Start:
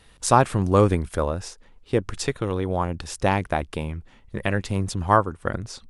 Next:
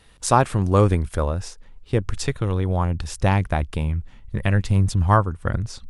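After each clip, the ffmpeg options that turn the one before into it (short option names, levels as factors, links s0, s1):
-af "asubboost=boost=3.5:cutoff=180"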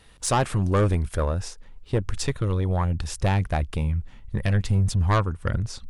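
-af "asoftclip=type=tanh:threshold=0.188"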